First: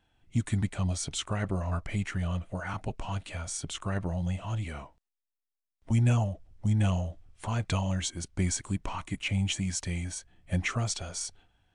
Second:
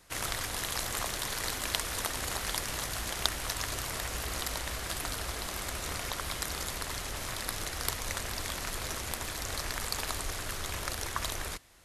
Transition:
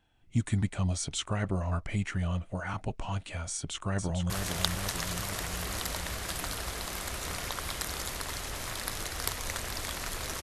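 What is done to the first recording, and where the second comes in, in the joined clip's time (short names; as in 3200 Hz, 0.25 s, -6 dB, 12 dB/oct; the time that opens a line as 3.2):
first
3.53–4.3 echo throw 0.45 s, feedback 70%, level -5.5 dB
4.3 switch to second from 2.91 s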